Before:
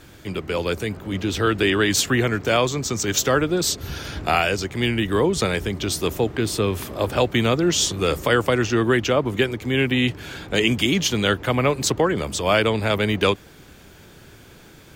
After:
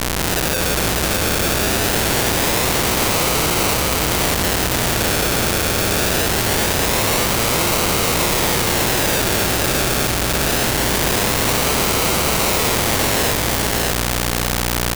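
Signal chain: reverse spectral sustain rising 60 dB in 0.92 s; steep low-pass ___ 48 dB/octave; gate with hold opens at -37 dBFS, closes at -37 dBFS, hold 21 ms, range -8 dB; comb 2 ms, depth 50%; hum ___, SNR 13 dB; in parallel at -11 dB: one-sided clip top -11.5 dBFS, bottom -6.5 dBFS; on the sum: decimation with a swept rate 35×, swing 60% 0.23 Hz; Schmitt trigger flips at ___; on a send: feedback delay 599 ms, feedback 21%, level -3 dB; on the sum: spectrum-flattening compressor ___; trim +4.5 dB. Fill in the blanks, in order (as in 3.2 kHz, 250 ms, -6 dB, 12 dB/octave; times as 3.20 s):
7.9 kHz, 60 Hz, -28 dBFS, 2:1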